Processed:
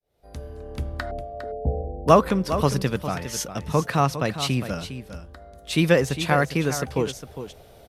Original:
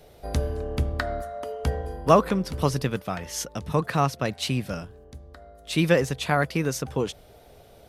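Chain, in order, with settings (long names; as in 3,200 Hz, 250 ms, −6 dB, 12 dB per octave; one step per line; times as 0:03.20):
fade in at the beginning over 1.78 s
0:01.11–0:02.08: Butterworth low-pass 790 Hz 72 dB per octave
single-tap delay 406 ms −11 dB
level +2 dB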